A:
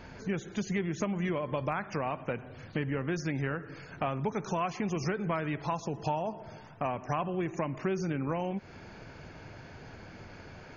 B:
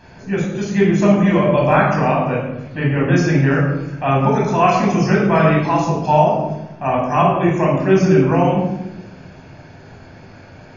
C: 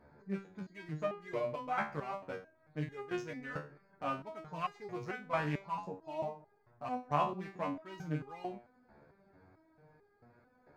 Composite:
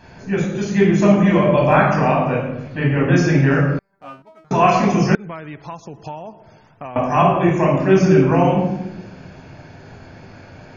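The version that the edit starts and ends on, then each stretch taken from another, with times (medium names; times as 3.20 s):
B
3.79–4.51 s: from C
5.15–6.96 s: from A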